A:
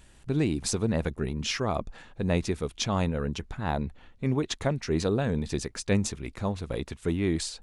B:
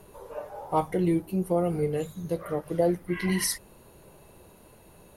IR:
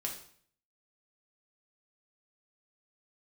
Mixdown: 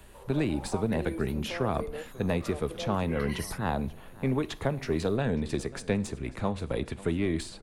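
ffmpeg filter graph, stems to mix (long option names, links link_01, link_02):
-filter_complex "[0:a]acrossover=split=97|210|1500[link_01][link_02][link_03][link_04];[link_01]acompressor=threshold=-40dB:ratio=4[link_05];[link_02]acompressor=threshold=-38dB:ratio=4[link_06];[link_03]acompressor=threshold=-29dB:ratio=4[link_07];[link_04]acompressor=threshold=-39dB:ratio=4[link_08];[link_05][link_06][link_07][link_08]amix=inputs=4:normalize=0,aeval=exprs='0.133*(cos(1*acos(clip(val(0)/0.133,-1,1)))-cos(1*PI/2))+0.0075*(cos(4*acos(clip(val(0)/0.133,-1,1)))-cos(4*PI/2))':channel_layout=same,equalizer=frequency=5900:width=1.6:gain=-8,volume=1dB,asplit=3[link_09][link_10][link_11];[link_10]volume=-12.5dB[link_12];[link_11]volume=-18.5dB[link_13];[1:a]highpass=470,alimiter=level_in=2dB:limit=-24dB:level=0:latency=1:release=132,volume=-2dB,volume=-4dB[link_14];[2:a]atrim=start_sample=2205[link_15];[link_12][link_15]afir=irnorm=-1:irlink=0[link_16];[link_13]aecho=0:1:542|1084|1626|2168|2710|3252:1|0.43|0.185|0.0795|0.0342|0.0147[link_17];[link_09][link_14][link_16][link_17]amix=inputs=4:normalize=0"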